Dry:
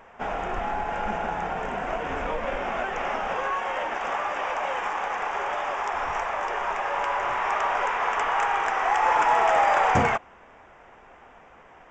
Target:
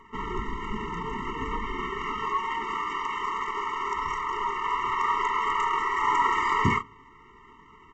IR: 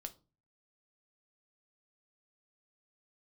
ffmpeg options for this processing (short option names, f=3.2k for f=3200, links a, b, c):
-filter_complex "[0:a]aecho=1:1:22|52:0.15|0.376,atempo=1.5,asplit=2[a][b];[1:a]atrim=start_sample=2205,asetrate=38808,aresample=44100[c];[b][c]afir=irnorm=-1:irlink=0,volume=-8.5dB[d];[a][d]amix=inputs=2:normalize=0,afftfilt=real='re*eq(mod(floor(b*sr/1024/450),2),0)':imag='im*eq(mod(floor(b*sr/1024/450),2),0)':win_size=1024:overlap=0.75"